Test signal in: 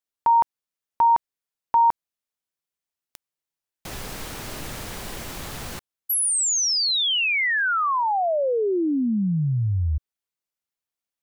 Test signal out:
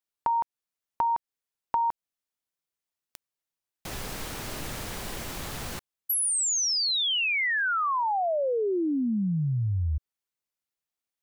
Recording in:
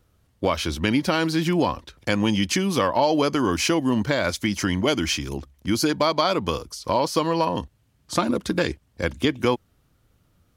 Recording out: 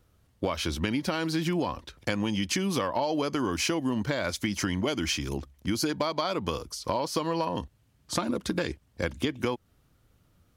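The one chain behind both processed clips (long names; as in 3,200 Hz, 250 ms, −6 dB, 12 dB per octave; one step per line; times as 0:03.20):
downward compressor 5 to 1, threshold −23 dBFS
level −1.5 dB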